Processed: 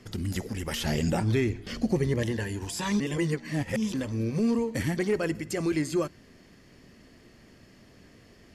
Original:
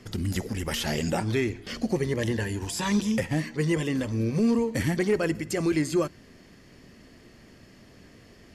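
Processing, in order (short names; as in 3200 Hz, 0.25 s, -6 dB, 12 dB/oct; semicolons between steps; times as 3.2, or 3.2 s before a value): 0.82–2.23 low shelf 230 Hz +7.5 dB; 3–3.94 reverse; gain -2.5 dB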